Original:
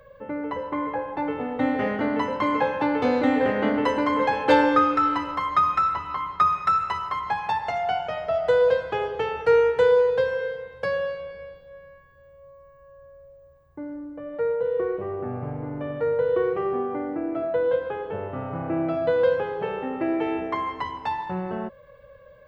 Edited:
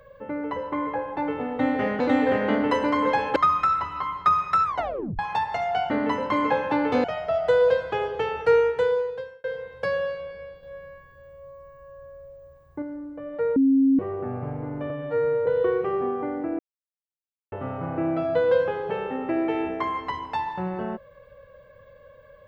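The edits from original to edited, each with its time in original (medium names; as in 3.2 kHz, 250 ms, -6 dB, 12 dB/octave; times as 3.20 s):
2.00–3.14 s: move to 8.04 s
4.50–5.50 s: delete
6.78 s: tape stop 0.55 s
9.48–10.44 s: fade out linear
11.63–13.82 s: gain +4.5 dB
14.56–14.99 s: bleep 270 Hz -15 dBFS
15.90–16.18 s: stretch 2×
17.31–18.24 s: mute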